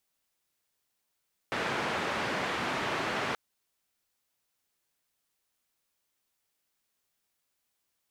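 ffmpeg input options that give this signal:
ffmpeg -f lavfi -i "anoisesrc=color=white:duration=1.83:sample_rate=44100:seed=1,highpass=frequency=120,lowpass=frequency=1800,volume=-16.5dB" out.wav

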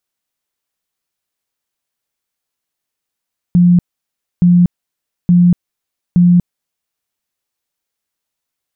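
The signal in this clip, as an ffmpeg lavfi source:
ffmpeg -f lavfi -i "aevalsrc='0.562*sin(2*PI*176*mod(t,0.87))*lt(mod(t,0.87),42/176)':duration=3.48:sample_rate=44100" out.wav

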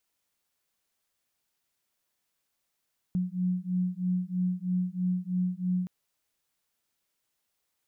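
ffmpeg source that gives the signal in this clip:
ffmpeg -f lavfi -i "aevalsrc='0.0335*(sin(2*PI*180*t)+sin(2*PI*183.1*t))':duration=2.72:sample_rate=44100" out.wav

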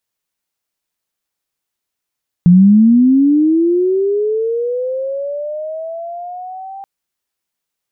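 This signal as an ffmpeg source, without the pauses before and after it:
ffmpeg -f lavfi -i "aevalsrc='pow(10,(-3-24*t/4.38)/20)*sin(2*PI*(170*t+620*t*t/(2*4.38)))':duration=4.38:sample_rate=44100" out.wav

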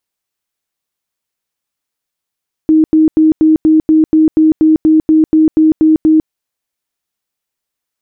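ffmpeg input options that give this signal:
ffmpeg -f lavfi -i "aevalsrc='0.596*sin(2*PI*314*mod(t,0.24))*lt(mod(t,0.24),47/314)':duration=3.6:sample_rate=44100" out.wav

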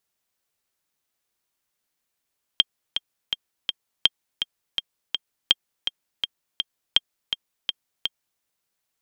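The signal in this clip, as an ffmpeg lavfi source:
ffmpeg -f lavfi -i "aevalsrc='pow(10,(-2-8.5*gte(mod(t,4*60/165),60/165))/20)*sin(2*PI*3200*mod(t,60/165))*exp(-6.91*mod(t,60/165)/0.03)':duration=5.81:sample_rate=44100" out.wav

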